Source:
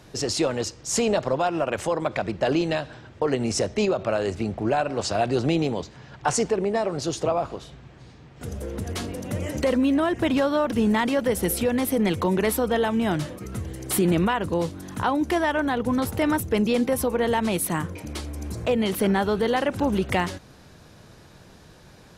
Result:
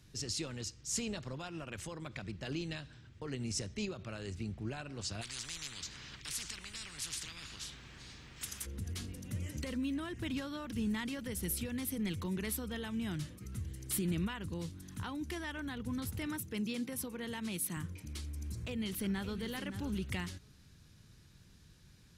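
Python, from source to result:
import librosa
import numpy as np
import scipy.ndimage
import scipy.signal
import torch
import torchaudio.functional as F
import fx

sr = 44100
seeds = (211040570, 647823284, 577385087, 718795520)

y = fx.spectral_comp(x, sr, ratio=10.0, at=(5.21, 8.65), fade=0.02)
y = fx.highpass(y, sr, hz=140.0, slope=12, at=(16.26, 17.77))
y = fx.echo_throw(y, sr, start_s=18.59, length_s=0.79, ms=570, feedback_pct=10, wet_db=-11.0)
y = fx.tone_stack(y, sr, knobs='6-0-2')
y = y * 10.0 ** (5.0 / 20.0)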